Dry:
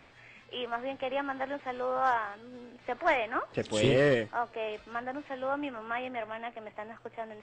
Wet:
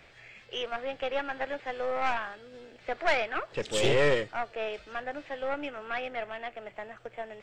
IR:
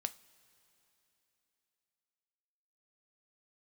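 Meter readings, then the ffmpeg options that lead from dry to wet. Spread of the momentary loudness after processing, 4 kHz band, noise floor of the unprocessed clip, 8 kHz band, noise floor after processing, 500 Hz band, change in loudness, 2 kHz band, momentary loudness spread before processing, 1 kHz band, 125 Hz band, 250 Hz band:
16 LU, +3.5 dB, -57 dBFS, +4.5 dB, -56 dBFS, +0.5 dB, +0.5 dB, +2.0 dB, 16 LU, -1.5 dB, -2.5 dB, -4.5 dB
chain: -af "aeval=exprs='(tanh(12.6*val(0)+0.7)-tanh(0.7))/12.6':c=same,equalizer=f=100:t=o:w=0.67:g=-5,equalizer=f=250:t=o:w=0.67:g=-10,equalizer=f=1000:t=o:w=0.67:g=-8,volume=2.37"

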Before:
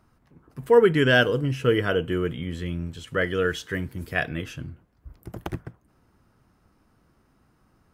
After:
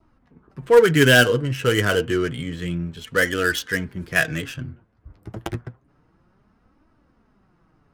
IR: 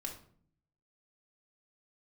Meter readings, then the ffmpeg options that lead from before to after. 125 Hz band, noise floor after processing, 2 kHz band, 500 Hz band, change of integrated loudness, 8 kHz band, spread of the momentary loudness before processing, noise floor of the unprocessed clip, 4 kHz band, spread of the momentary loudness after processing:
+3.5 dB, -63 dBFS, +6.0 dB, +2.5 dB, +4.0 dB, +14.5 dB, 20 LU, -65 dBFS, +6.5 dB, 19 LU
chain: -filter_complex "[0:a]adynamicequalizer=threshold=0.01:dfrequency=1600:dqfactor=3.2:tfrequency=1600:tqfactor=3.2:attack=5:release=100:ratio=0.375:range=2.5:mode=boostabove:tftype=bell,asplit=2[s0][s1];[s1]acontrast=79,volume=0.944[s2];[s0][s2]amix=inputs=2:normalize=0,flanger=delay=3:depth=7.1:regen=37:speed=0.29:shape=triangular,acrossover=split=430[s3][s4];[s4]adynamicsmooth=sensitivity=4.5:basefreq=2300[s5];[s3][s5]amix=inputs=2:normalize=0,asoftclip=type=hard:threshold=0.794,crystalizer=i=3:c=0,volume=0.668"

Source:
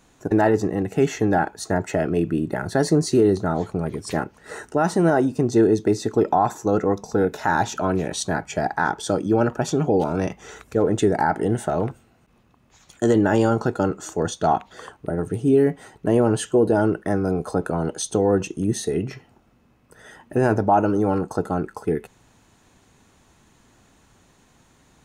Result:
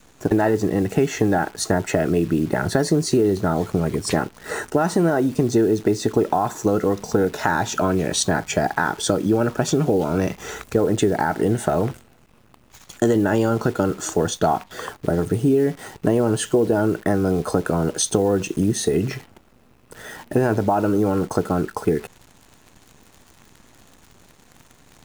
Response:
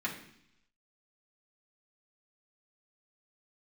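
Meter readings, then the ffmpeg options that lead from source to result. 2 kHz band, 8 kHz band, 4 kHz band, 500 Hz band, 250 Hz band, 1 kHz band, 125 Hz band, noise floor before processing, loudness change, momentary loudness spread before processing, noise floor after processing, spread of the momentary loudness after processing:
+1.5 dB, +5.5 dB, +5.0 dB, +0.5 dB, +1.0 dB, -1.0 dB, +1.5 dB, -59 dBFS, +1.0 dB, 9 LU, -54 dBFS, 5 LU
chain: -af "acompressor=threshold=0.0631:ratio=4,adynamicequalizer=threshold=0.00562:dfrequency=820:dqfactor=3.7:tfrequency=820:tqfactor=3.7:attack=5:release=100:ratio=0.375:range=3:mode=cutabove:tftype=bell,acrusher=bits=9:dc=4:mix=0:aa=0.000001,volume=2.51"

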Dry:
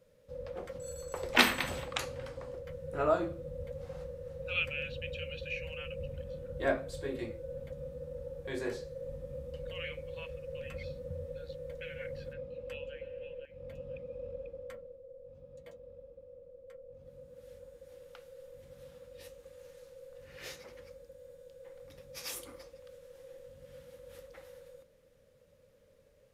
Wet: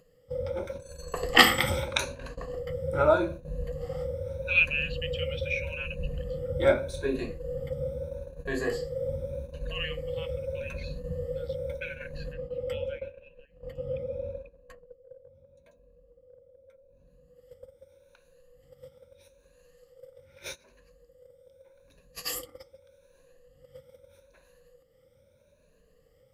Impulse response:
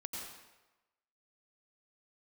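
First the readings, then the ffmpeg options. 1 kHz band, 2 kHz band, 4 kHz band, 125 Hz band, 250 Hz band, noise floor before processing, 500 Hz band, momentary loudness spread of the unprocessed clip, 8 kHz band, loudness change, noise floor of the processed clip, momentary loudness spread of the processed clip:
+7.0 dB, +7.5 dB, +7.5 dB, +8.5 dB, +5.5 dB, -64 dBFS, +7.0 dB, 20 LU, +6.0 dB, +7.5 dB, -64 dBFS, 16 LU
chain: -af "afftfilt=real='re*pow(10,15/40*sin(2*PI*(1.5*log(max(b,1)*sr/1024/100)/log(2)-(0.81)*(pts-256)/sr)))':imag='im*pow(10,15/40*sin(2*PI*(1.5*log(max(b,1)*sr/1024/100)/log(2)-(0.81)*(pts-256)/sr)))':win_size=1024:overlap=0.75,lowshelf=f=100:g=4.5,acompressor=mode=upward:threshold=0.0112:ratio=2.5,agate=range=0.141:threshold=0.00891:ratio=16:detection=peak,volume=1.68"

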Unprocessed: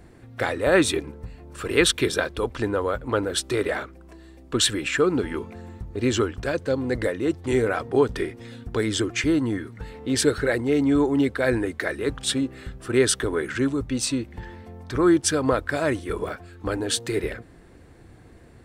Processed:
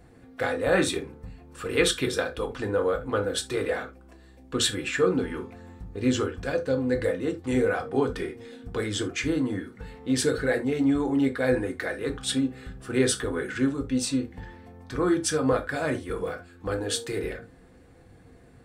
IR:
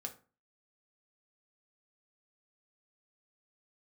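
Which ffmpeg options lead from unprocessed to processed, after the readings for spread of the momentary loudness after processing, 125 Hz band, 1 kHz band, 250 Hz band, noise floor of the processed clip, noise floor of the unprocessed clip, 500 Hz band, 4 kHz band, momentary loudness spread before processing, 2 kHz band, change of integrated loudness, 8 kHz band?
14 LU, -3.0 dB, -3.5 dB, -2.5 dB, -52 dBFS, -49 dBFS, -3.0 dB, -4.0 dB, 15 LU, -3.5 dB, -3.0 dB, -4.5 dB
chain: -filter_complex "[1:a]atrim=start_sample=2205,atrim=end_sample=3969[s0];[0:a][s0]afir=irnorm=-1:irlink=0,volume=0.891"

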